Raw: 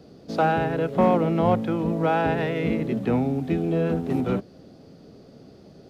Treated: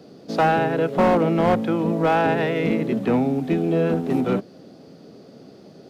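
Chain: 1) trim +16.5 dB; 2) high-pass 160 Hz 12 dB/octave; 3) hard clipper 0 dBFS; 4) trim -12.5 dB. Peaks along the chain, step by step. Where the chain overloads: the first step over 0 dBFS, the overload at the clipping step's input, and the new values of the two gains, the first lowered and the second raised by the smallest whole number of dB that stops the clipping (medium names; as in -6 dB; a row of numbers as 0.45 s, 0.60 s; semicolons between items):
+9.0 dBFS, +8.0 dBFS, 0.0 dBFS, -12.5 dBFS; step 1, 8.0 dB; step 1 +8.5 dB, step 4 -4.5 dB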